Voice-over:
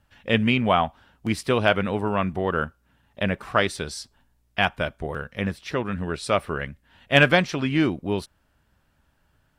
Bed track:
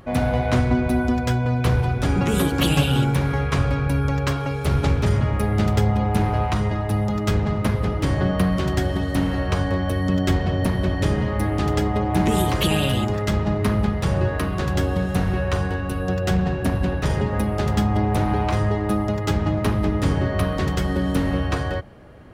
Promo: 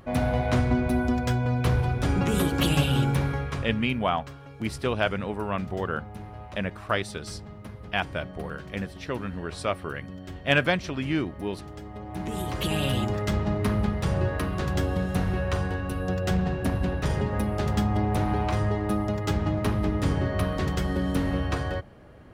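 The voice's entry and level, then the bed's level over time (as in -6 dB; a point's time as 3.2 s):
3.35 s, -5.5 dB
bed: 3.23 s -4 dB
4.05 s -20 dB
11.79 s -20 dB
12.89 s -4.5 dB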